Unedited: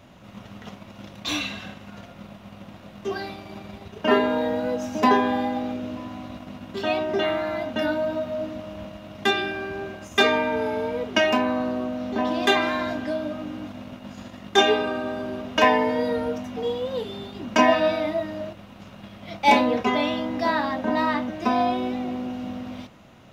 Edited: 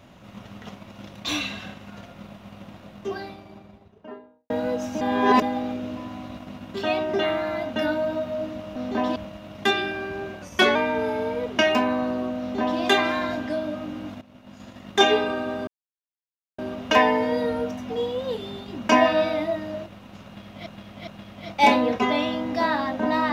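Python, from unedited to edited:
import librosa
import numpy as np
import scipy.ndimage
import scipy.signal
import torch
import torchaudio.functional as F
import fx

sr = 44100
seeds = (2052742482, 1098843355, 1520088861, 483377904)

y = fx.studio_fade_out(x, sr, start_s=2.63, length_s=1.87)
y = fx.edit(y, sr, fx.reverse_span(start_s=5.01, length_s=0.41),
    fx.speed_span(start_s=10.02, length_s=0.31, speed=0.93),
    fx.duplicate(start_s=11.97, length_s=0.4, to_s=8.76),
    fx.fade_in_from(start_s=13.79, length_s=0.76, floor_db=-16.0),
    fx.insert_silence(at_s=15.25, length_s=0.91),
    fx.repeat(start_s=18.92, length_s=0.41, count=3), tone=tone)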